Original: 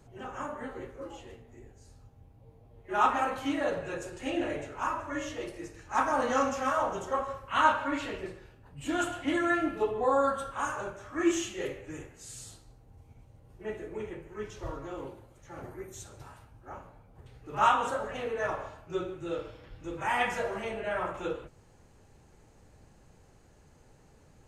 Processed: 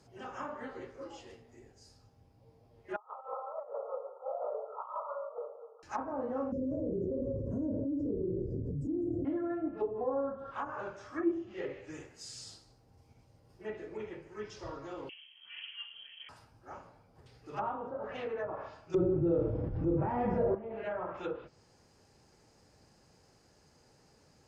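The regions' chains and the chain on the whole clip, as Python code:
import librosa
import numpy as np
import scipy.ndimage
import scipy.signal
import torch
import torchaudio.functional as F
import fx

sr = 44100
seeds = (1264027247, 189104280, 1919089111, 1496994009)

y = fx.chain(x, sr, fx.brickwall_bandpass(low_hz=410.0, high_hz=1400.0),
    fx.over_compress(threshold_db=-36.0, ratio=-0.5), at=(2.96, 5.83))
y = fx.chain(y, sr, fx.cheby2_bandstop(low_hz=780.0, high_hz=3700.0, order=4, stop_db=40),
    fx.peak_eq(hz=3400.0, db=-10.5, octaves=1.9),
    fx.env_flatten(amount_pct=100), at=(6.52, 9.25))
y = fx.chain(y, sr, fx.air_absorb(metres=400.0),
    fx.freq_invert(carrier_hz=3200), at=(15.09, 16.29))
y = fx.chain(y, sr, fx.low_shelf(hz=280.0, db=11.5),
    fx.leveller(passes=1),
    fx.env_flatten(amount_pct=70), at=(18.94, 20.55))
y = fx.highpass(y, sr, hz=140.0, slope=6)
y = fx.peak_eq(y, sr, hz=5000.0, db=14.0, octaves=0.33)
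y = fx.env_lowpass_down(y, sr, base_hz=540.0, full_db=-26.5)
y = F.gain(torch.from_numpy(y), -3.0).numpy()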